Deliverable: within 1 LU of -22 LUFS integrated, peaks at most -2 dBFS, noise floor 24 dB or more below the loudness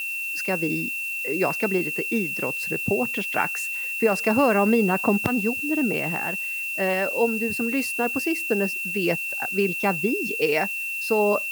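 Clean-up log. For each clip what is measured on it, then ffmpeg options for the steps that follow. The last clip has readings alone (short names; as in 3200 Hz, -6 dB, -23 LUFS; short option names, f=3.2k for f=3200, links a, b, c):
steady tone 2700 Hz; tone level -27 dBFS; noise floor -30 dBFS; noise floor target -48 dBFS; loudness -23.5 LUFS; peak -5.5 dBFS; loudness target -22.0 LUFS
-> -af "bandreject=f=2.7k:w=30"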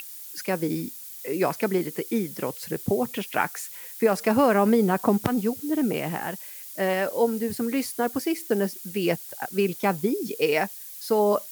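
steady tone none; noise floor -41 dBFS; noise floor target -50 dBFS
-> -af "afftdn=nr=9:nf=-41"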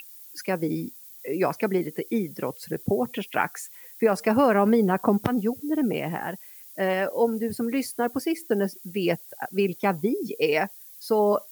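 noise floor -46 dBFS; noise floor target -50 dBFS
-> -af "afftdn=nr=6:nf=-46"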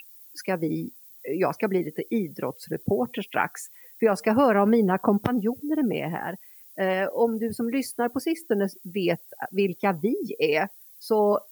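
noise floor -50 dBFS; loudness -26.0 LUFS; peak -6.5 dBFS; loudness target -22.0 LUFS
-> -af "volume=4dB"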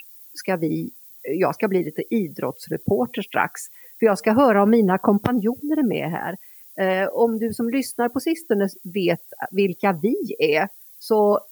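loudness -22.0 LUFS; peak -2.5 dBFS; noise floor -46 dBFS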